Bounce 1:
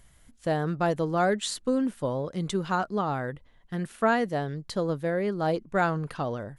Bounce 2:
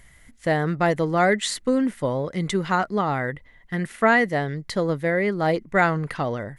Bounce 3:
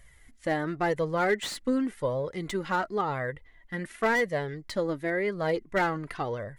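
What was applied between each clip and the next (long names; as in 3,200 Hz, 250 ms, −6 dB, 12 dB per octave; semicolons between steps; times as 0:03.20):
parametric band 2,000 Hz +13 dB 0.3 octaves; level +4.5 dB
flanger 0.93 Hz, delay 1.6 ms, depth 2.1 ms, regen +22%; slew-rate limiting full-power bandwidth 140 Hz; level −2 dB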